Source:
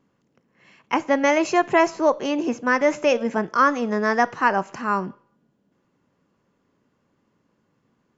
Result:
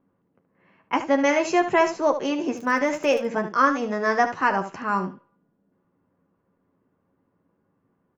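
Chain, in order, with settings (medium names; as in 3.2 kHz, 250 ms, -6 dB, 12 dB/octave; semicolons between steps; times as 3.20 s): level-controlled noise filter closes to 1.4 kHz, open at -18 dBFS; 2.56–3.25 s: crackle 34 per s -28 dBFS; early reflections 11 ms -6.5 dB, 74 ms -10.5 dB; trim -2.5 dB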